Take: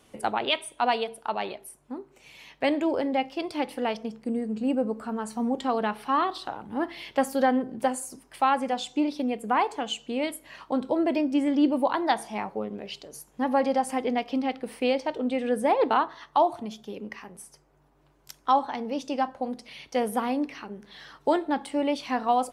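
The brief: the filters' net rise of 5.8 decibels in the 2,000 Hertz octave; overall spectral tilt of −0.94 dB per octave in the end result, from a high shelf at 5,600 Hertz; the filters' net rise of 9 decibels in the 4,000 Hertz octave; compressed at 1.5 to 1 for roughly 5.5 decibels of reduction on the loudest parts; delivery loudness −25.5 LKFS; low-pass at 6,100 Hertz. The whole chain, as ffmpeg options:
ffmpeg -i in.wav -af "lowpass=6100,equalizer=frequency=2000:width_type=o:gain=4,equalizer=frequency=4000:width_type=o:gain=8.5,highshelf=frequency=5600:gain=7.5,acompressor=threshold=-29dB:ratio=1.5,volume=4dB" out.wav

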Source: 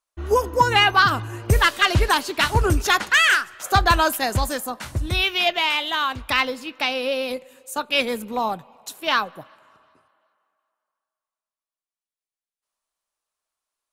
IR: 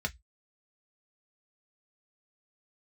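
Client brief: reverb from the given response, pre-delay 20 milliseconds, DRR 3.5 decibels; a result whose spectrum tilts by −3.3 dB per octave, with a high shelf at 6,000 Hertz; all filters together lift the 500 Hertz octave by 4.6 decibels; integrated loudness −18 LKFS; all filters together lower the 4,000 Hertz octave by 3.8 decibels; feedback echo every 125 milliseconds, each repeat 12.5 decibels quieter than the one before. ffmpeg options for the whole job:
-filter_complex "[0:a]equalizer=frequency=500:width_type=o:gain=5.5,equalizer=frequency=4000:width_type=o:gain=-4,highshelf=frequency=6000:gain=-5,aecho=1:1:125|250|375:0.237|0.0569|0.0137,asplit=2[link_01][link_02];[1:a]atrim=start_sample=2205,adelay=20[link_03];[link_02][link_03]afir=irnorm=-1:irlink=0,volume=-8dB[link_04];[link_01][link_04]amix=inputs=2:normalize=0"

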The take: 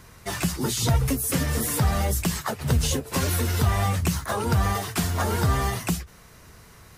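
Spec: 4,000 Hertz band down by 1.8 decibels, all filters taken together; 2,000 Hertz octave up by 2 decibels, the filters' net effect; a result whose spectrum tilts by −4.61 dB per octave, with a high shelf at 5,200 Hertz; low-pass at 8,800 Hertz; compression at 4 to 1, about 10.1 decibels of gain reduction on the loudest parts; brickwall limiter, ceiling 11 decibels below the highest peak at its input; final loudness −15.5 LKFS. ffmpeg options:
ffmpeg -i in.wav -af "lowpass=8800,equalizer=frequency=2000:width_type=o:gain=3,equalizer=frequency=4000:width_type=o:gain=-5.5,highshelf=frequency=5200:gain=5,acompressor=threshold=-29dB:ratio=4,volume=20.5dB,alimiter=limit=-6.5dB:level=0:latency=1" out.wav

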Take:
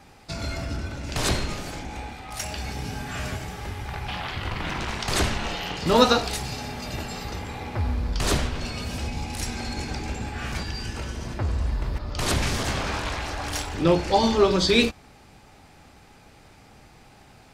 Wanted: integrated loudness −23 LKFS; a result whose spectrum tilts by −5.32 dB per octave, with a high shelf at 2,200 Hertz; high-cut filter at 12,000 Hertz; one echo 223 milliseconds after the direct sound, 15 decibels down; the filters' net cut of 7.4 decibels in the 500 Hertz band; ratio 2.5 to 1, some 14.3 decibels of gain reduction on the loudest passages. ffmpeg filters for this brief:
ffmpeg -i in.wav -af "lowpass=12000,equalizer=frequency=500:width_type=o:gain=-9,highshelf=frequency=2200:gain=-9,acompressor=threshold=-41dB:ratio=2.5,aecho=1:1:223:0.178,volume=18dB" out.wav

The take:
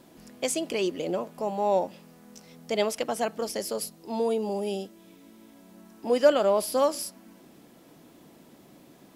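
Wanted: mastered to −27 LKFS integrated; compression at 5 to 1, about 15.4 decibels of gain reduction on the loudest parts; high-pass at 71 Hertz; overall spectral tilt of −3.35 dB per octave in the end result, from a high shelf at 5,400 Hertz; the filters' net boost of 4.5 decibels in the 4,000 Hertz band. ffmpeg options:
ffmpeg -i in.wav -af "highpass=71,equalizer=frequency=4000:width_type=o:gain=8.5,highshelf=frequency=5400:gain=-5,acompressor=threshold=-31dB:ratio=5,volume=8.5dB" out.wav

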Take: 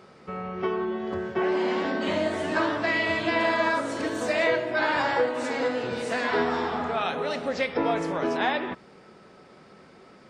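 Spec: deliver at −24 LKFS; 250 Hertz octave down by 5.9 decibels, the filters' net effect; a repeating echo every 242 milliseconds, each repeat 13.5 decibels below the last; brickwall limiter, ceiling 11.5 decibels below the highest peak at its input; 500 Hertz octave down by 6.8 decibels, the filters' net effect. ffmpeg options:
ffmpeg -i in.wav -af "equalizer=frequency=250:width_type=o:gain=-4.5,equalizer=frequency=500:width_type=o:gain=-8,alimiter=level_in=2dB:limit=-24dB:level=0:latency=1,volume=-2dB,aecho=1:1:242|484:0.211|0.0444,volume=10.5dB" out.wav

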